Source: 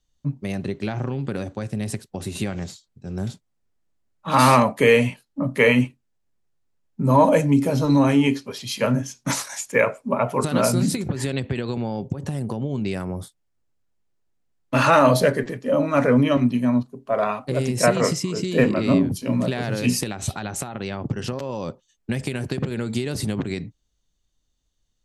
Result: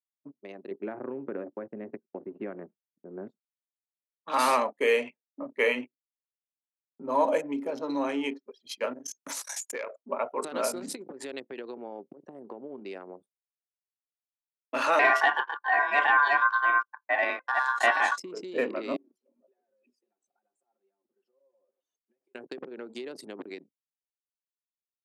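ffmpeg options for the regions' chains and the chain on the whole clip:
-filter_complex "[0:a]asettb=1/sr,asplit=3[a][b][c];[a]atrim=end=0.714[d];[b]atrim=start=0.71:end=3.28,asetpts=PTS-STARTPTS,afade=t=in:d=0.004:c=qsin,afade=t=out:st=2.566:d=0.004:c=qsin,lowpass=f=2.1k:w=0.5412,lowpass=f=2.1k:w=1.3066,lowshelf=f=380:g=11,bandreject=f=780:w=11[e];[c]atrim=start=3.276[f];[d][e]acrossfade=d=0.004:c1=hsin:c2=qsin[g];[g][f]acrossfade=d=0.004:c1=qsin:c2=hsin,asettb=1/sr,asplit=3[h][i][j];[h]atrim=end=8.934[k];[i]atrim=start=8.93:end=9.96,asetpts=PTS-STARTPTS,afade=t=in:d=0.004:c=qsin,afade=t=out:st=1.026:d=0.004:c=qsin,highshelf=f=5k:g=9.5,aeval=exprs='0.631*sin(PI/2*1.41*val(0)/0.631)':c=same,acompressor=threshold=-23dB:ratio=10:attack=3.2:release=140:knee=1:detection=peak[l];[j]atrim=start=9.956[m];[k][l]acrossfade=d=0.004:c1=hsin:c2=qsin[n];[n][m]acrossfade=d=0.004:c1=qsin:c2=hsin,asettb=1/sr,asplit=3[o][p][q];[o]atrim=end=14.994[r];[p]atrim=start=14.99:end=18.18,asetpts=PTS-STARTPTS,afade=t=in:d=0.004:c=qsin,afade=t=out:st=3.186:d=0.004:c=qsin,aemphasis=mode=reproduction:type=75fm,acontrast=66,aeval=exprs='val(0)*sin(2*PI*1300*n/s)':c=same[s];[q]atrim=start=18.176[t];[r][s]acrossfade=d=0.004:c1=hsin:c2=qsin[u];[u][t]acrossfade=d=0.004:c1=qsin:c2=hsin,asettb=1/sr,asplit=3[v][w][x];[v]atrim=end=18.964[y];[w]atrim=start=18.96:end=22.35,asetpts=PTS-STARTPTS,afade=t=in:d=0.004:c=qsin,afade=t=out:st=3.386:d=0.004:c=qsin,aeval=exprs='val(0)+0.5*0.0237*sgn(val(0))':c=same,highpass=340,acompressor=threshold=-36dB:ratio=5:attack=3.2:release=140:knee=1:detection=peak[z];[x]atrim=start=22.346[aa];[y][z]acrossfade=d=0.004:c1=hsin:c2=qsin[ab];[ab][aa]acrossfade=d=0.004:c1=qsin:c2=hsin,agate=range=-33dB:threshold=-34dB:ratio=3:detection=peak,anlmdn=158,highpass=f=320:w=0.5412,highpass=f=320:w=1.3066,volume=-8dB"

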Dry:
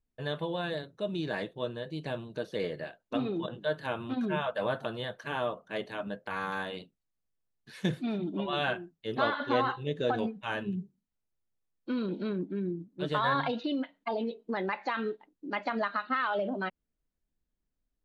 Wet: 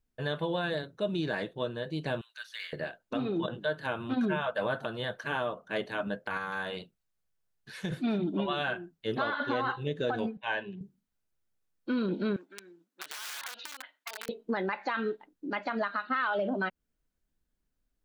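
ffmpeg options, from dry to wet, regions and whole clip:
-filter_complex "[0:a]asettb=1/sr,asplit=3[a][b][c];[a]atrim=end=2.214[d];[b]atrim=start=2.21:end=2.73,asetpts=PTS-STARTPTS,afade=t=in:d=0.004:c=qsin,afade=t=out:st=0.516:d=0.004:c=qsin,highpass=f=1.5k:w=0.5412,highpass=f=1.5k:w=1.3066,acrusher=bits=8:mode=log:mix=0:aa=0.000001[e];[c]atrim=start=2.726[f];[d][e]acrossfade=d=0.004:c1=hsin:c2=qsin[g];[g][f]acrossfade=d=0.004:c1=qsin:c2=hsin,asettb=1/sr,asplit=3[h][i][j];[h]atrim=end=6.374[k];[i]atrim=start=6.37:end=7.92,asetpts=PTS-STARTPTS,afade=t=in:d=0.004:c=qsin,afade=t=out:st=1.546:d=0.004:c=qsin,equalizer=f=270:t=o:w=0.41:g=-7.5,acompressor=threshold=-35dB:ratio=3:attack=3.2:release=140:knee=1:detection=peak[l];[j]atrim=start=7.916[m];[k][l]acrossfade=d=0.004:c1=hsin:c2=qsin[n];[n][m]acrossfade=d=0.004:c1=qsin:c2=hsin,asettb=1/sr,asplit=3[o][p][q];[o]atrim=end=10.374[r];[p]atrim=start=10.37:end=10.81,asetpts=PTS-STARTPTS,afade=t=in:d=0.004:c=qsin,afade=t=out:st=0.436:d=0.004:c=qsin,asuperstop=centerf=1300:order=4:qfactor=3.3,acrossover=split=430 4700:gain=0.2 1 0.1[s][t][u];[s][t][u]amix=inputs=3:normalize=0[v];[q]atrim=start=10.806[w];[r][v]acrossfade=d=0.004:c1=hsin:c2=qsin[x];[x][w]acrossfade=d=0.004:c1=qsin:c2=hsin,asettb=1/sr,asplit=3[y][z][aa];[y]atrim=end=12.364[ab];[z]atrim=start=12.36:end=14.29,asetpts=PTS-STARTPTS,afade=t=in:d=0.004:c=qsin,afade=t=out:st=1.926:d=0.004:c=qsin,aeval=exprs='(mod(18.8*val(0)+1,2)-1)/18.8':c=same,highpass=1.1k,acompressor=threshold=-38dB:ratio=12:attack=3.2:release=140:knee=1:detection=peak[ac];[aa]atrim=start=14.286[ad];[ab][ac]acrossfade=d=0.004:c1=hsin:c2=qsin[ae];[ae][ad]acrossfade=d=0.004:c1=qsin:c2=hsin,equalizer=f=1.5k:t=o:w=0.26:g=4.5,alimiter=limit=-23.5dB:level=0:latency=1:release=268,volume=3dB"

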